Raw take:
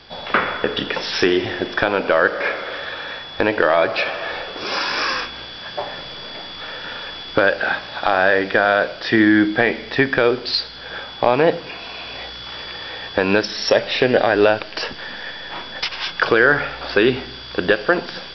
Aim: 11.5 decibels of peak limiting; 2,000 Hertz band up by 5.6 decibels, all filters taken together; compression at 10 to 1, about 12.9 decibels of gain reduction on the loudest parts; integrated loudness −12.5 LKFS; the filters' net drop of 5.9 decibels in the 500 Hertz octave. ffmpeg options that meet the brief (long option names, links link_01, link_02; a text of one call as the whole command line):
ffmpeg -i in.wav -af "equalizer=frequency=500:width_type=o:gain=-8,equalizer=frequency=2000:width_type=o:gain=8,acompressor=threshold=-21dB:ratio=10,volume=14.5dB,alimiter=limit=-1.5dB:level=0:latency=1" out.wav